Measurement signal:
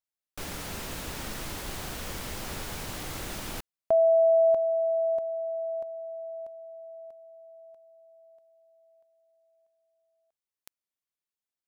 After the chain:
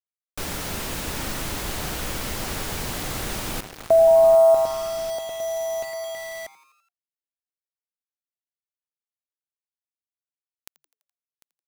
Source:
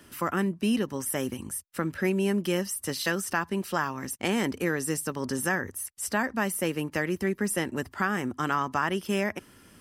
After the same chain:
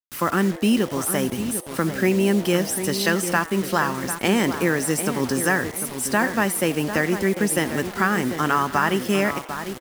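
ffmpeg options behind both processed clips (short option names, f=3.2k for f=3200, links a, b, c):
-filter_complex "[0:a]asplit=2[a][b];[b]adelay=748,lowpass=f=1.8k:p=1,volume=-9dB,asplit=2[c][d];[d]adelay=748,lowpass=f=1.8k:p=1,volume=0.37,asplit=2[e][f];[f]adelay=748,lowpass=f=1.8k:p=1,volume=0.37,asplit=2[g][h];[h]adelay=748,lowpass=f=1.8k:p=1,volume=0.37[i];[c][e][g][i]amix=inputs=4:normalize=0[j];[a][j]amix=inputs=2:normalize=0,acrusher=bits=6:mix=0:aa=0.000001,asplit=2[k][l];[l]asplit=5[m][n][o][p][q];[m]adelay=84,afreqshift=140,volume=-19dB[r];[n]adelay=168,afreqshift=280,volume=-23.3dB[s];[o]adelay=252,afreqshift=420,volume=-27.6dB[t];[p]adelay=336,afreqshift=560,volume=-31.9dB[u];[q]adelay=420,afreqshift=700,volume=-36.2dB[v];[r][s][t][u][v]amix=inputs=5:normalize=0[w];[k][w]amix=inputs=2:normalize=0,volume=6.5dB"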